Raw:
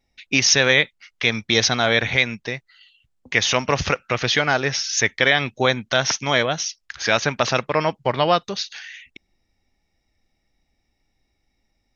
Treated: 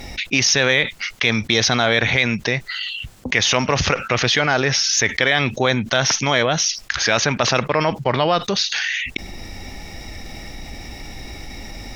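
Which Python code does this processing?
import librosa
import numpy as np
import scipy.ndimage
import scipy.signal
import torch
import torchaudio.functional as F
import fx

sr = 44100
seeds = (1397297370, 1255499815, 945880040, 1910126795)

y = fx.cheby_harmonics(x, sr, harmonics=(8,), levels_db=(-44,), full_scale_db=-1.5)
y = fx.env_flatten(y, sr, amount_pct=70)
y = y * 10.0 ** (-2.0 / 20.0)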